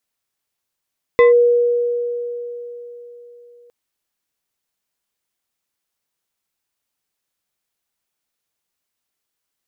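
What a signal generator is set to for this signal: FM tone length 2.51 s, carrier 480 Hz, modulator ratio 3.18, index 0.59, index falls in 0.14 s linear, decay 3.84 s, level -6 dB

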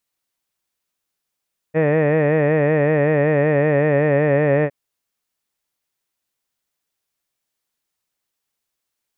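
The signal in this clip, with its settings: formant-synthesis vowel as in head, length 2.96 s, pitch 153 Hz, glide -1 st, vibrato depth 0.85 st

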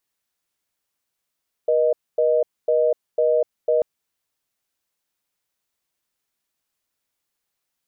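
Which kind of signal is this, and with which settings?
call progress tone reorder tone, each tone -18 dBFS 2.14 s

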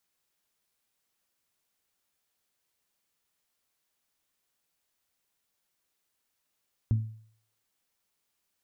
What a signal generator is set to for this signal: glass hit bell, lowest mode 110 Hz, decay 0.55 s, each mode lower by 11.5 dB, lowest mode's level -19 dB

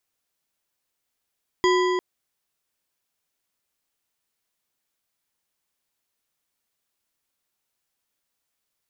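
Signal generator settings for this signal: metal hit bar, length 0.35 s, lowest mode 365 Hz, modes 6, decay 3.80 s, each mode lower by 4 dB, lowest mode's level -17 dB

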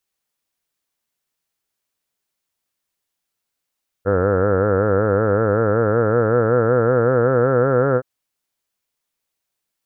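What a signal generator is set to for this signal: formant-synthesis vowel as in heard, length 3.97 s, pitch 94.2 Hz, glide +6 st, vibrato depth 1.15 st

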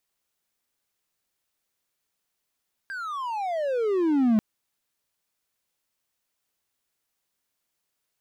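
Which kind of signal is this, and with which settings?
gliding synth tone triangle, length 1.49 s, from 1.62 kHz, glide -35.5 st, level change +15 dB, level -14.5 dB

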